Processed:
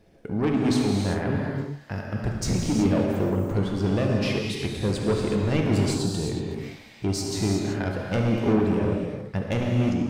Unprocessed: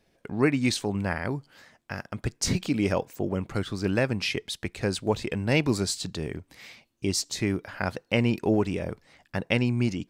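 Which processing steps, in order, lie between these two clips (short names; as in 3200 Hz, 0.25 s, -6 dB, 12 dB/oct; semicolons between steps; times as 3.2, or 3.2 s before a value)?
tilt shelf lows +5.5 dB, about 910 Hz; in parallel at -0.5 dB: compressor, threshold -54 dBFS, peak gain reduction 36 dB; on the sum: soft clip -20 dBFS, distortion -10 dB; on a send: flutter echo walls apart 11.9 m, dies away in 0.27 s; on the sum: non-linear reverb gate 0.4 s flat, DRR -1 dB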